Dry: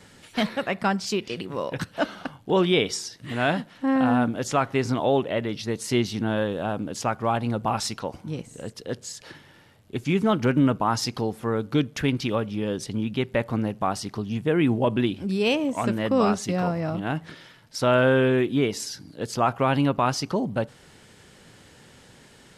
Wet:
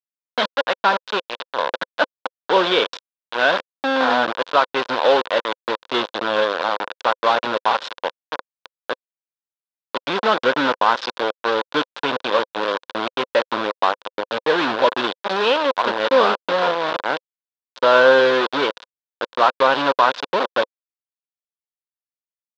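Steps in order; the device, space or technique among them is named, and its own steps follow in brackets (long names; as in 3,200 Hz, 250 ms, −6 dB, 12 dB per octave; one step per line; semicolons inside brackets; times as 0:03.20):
hand-held game console (bit reduction 4 bits; loudspeaker in its box 410–4,200 Hz, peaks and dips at 520 Hz +8 dB, 1,000 Hz +8 dB, 1,500 Hz +7 dB, 2,100 Hz −4 dB, 3,600 Hz +6 dB)
level +2.5 dB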